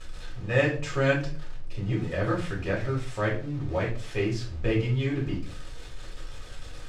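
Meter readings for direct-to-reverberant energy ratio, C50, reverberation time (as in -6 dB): -4.5 dB, 8.0 dB, 0.45 s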